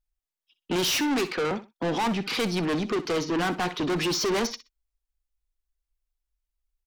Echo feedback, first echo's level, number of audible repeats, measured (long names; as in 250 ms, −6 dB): 20%, −15.0 dB, 2